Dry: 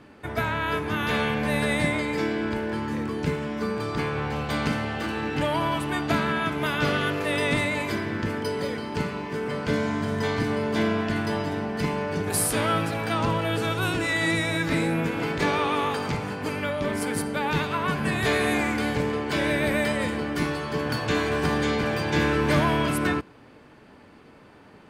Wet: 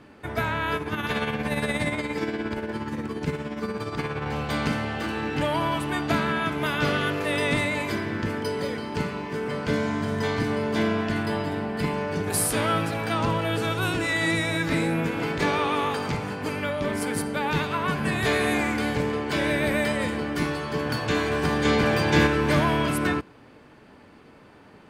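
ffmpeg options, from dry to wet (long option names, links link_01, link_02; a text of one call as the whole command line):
ffmpeg -i in.wav -filter_complex "[0:a]asettb=1/sr,asplit=3[link_01][link_02][link_03];[link_01]atrim=end=0.764[link_04];[link_02]atrim=start=0.76:end=4.26,asetpts=PTS-STARTPTS,afade=type=in:duration=0.004:curve=qsin,afade=type=out:start_time=3.496:duration=0.004:curve=qsin,tremolo=f=17:d=0.53[link_05];[link_03]atrim=start=4.256[link_06];[link_04][link_05]acrossfade=duration=0.004:curve1=hsin:curve2=qsin[link_07];[link_07][link_06]acrossfade=duration=0.004:curve1=qsin:curve2=hsin,asettb=1/sr,asplit=3[link_08][link_09][link_10];[link_08]atrim=end=11.234[link_11];[link_09]atrim=start=11.23:end=11.94,asetpts=PTS-STARTPTS,afade=type=in:duration=0.004:curve=qsin,afade=type=out:start_time=0.706:duration=0.004:curve=qsin,equalizer=frequency=6000:width=6.3:gain=-10.5[link_12];[link_10]atrim=start=11.936[link_13];[link_11][link_12]acrossfade=duration=0.004:curve1=hsin:curve2=qsin[link_14];[link_14][link_13]acrossfade=duration=0.004:curve1=qsin:curve2=hsin,asplit=3[link_15][link_16][link_17];[link_15]atrim=end=21.652[link_18];[link_16]atrim=start=21.648:end=22.272,asetpts=PTS-STARTPTS,volume=4dB[link_19];[link_17]atrim=start=22.268[link_20];[link_18][link_19]acrossfade=duration=0.004:curve1=hsin:curve2=hsin[link_21];[link_21][link_20]acrossfade=duration=0.004:curve1=hsin:curve2=hsin" out.wav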